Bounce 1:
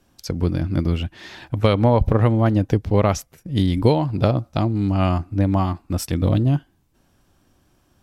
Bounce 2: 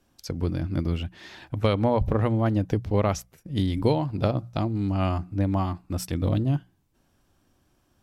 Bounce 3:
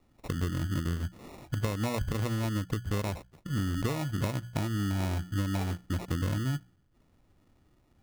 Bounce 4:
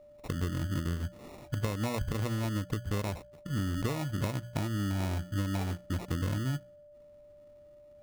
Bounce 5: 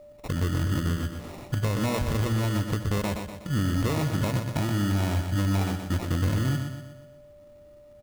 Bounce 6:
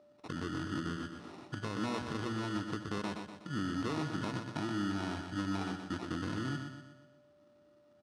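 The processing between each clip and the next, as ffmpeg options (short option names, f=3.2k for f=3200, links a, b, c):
-af "bandreject=f=60:t=h:w=6,bandreject=f=120:t=h:w=6,bandreject=f=180:t=h:w=6,volume=-5.5dB"
-af "lowshelf=f=370:g=6,acompressor=threshold=-24dB:ratio=6,acrusher=samples=28:mix=1:aa=0.000001,volume=-3.5dB"
-af "aeval=exprs='val(0)+0.00282*sin(2*PI*590*n/s)':c=same,volume=-1.5dB"
-af "aecho=1:1:123|246|369|492|615|738:0.422|0.207|0.101|0.0496|0.0243|0.0119,asoftclip=type=hard:threshold=-26.5dB,acrusher=bits=7:mode=log:mix=0:aa=0.000001,volume=6.5dB"
-af "highpass=190,equalizer=f=320:t=q:w=4:g=4,equalizer=f=560:t=q:w=4:g=-9,equalizer=f=1.4k:t=q:w=4:g=5,equalizer=f=2.2k:t=q:w=4:g=-5,equalizer=f=7.2k:t=q:w=4:g=-9,lowpass=f=8k:w=0.5412,lowpass=f=8k:w=1.3066,volume=-7dB"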